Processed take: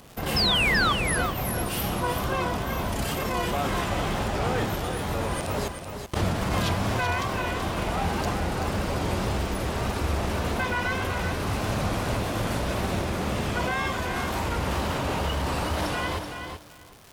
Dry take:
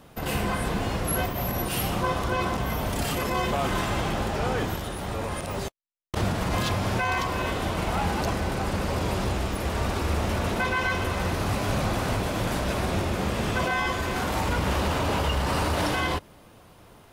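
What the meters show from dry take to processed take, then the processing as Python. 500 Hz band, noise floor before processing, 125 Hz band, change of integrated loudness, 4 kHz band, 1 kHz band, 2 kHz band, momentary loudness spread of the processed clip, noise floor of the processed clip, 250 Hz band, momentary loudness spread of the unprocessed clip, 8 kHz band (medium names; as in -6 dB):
-0.5 dB, -52 dBFS, -0.5 dB, 0.0 dB, +3.0 dB, -0.5 dB, +1.0 dB, 5 LU, -38 dBFS, -0.5 dB, 3 LU, 0.0 dB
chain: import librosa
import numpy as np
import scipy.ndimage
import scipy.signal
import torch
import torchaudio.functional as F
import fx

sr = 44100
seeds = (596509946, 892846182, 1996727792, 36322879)

p1 = fx.rider(x, sr, range_db=10, speed_s=2.0)
p2 = fx.dmg_crackle(p1, sr, seeds[0], per_s=300.0, level_db=-36.0)
p3 = fx.wow_flutter(p2, sr, seeds[1], rate_hz=2.1, depth_cents=80.0)
p4 = fx.spec_paint(p3, sr, seeds[2], shape='fall', start_s=0.36, length_s=0.57, low_hz=1100.0, high_hz=5400.0, level_db=-22.0)
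p5 = p4 + fx.echo_feedback(p4, sr, ms=381, feedback_pct=16, wet_db=-7.0, dry=0)
y = F.gain(torch.from_numpy(p5), -1.5).numpy()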